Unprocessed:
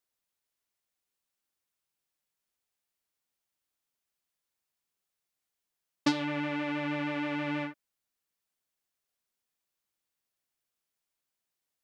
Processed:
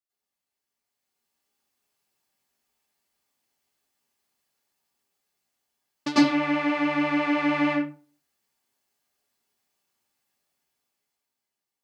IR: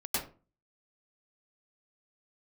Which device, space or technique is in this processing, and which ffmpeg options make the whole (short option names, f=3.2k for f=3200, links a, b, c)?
far laptop microphone: -filter_complex "[1:a]atrim=start_sample=2205[a];[0:a][a]afir=irnorm=-1:irlink=0,highpass=f=100:p=1,dynaudnorm=f=210:g=11:m=10dB,volume=-5.5dB"